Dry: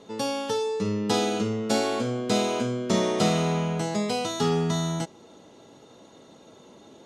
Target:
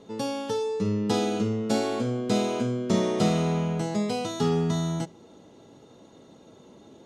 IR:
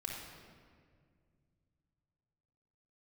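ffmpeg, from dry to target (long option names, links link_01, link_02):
-filter_complex "[0:a]lowshelf=frequency=420:gain=7.5,asplit=2[link_01][link_02];[1:a]atrim=start_sample=2205,atrim=end_sample=3528[link_03];[link_02][link_03]afir=irnorm=-1:irlink=0,volume=-20dB[link_04];[link_01][link_04]amix=inputs=2:normalize=0,volume=-5dB"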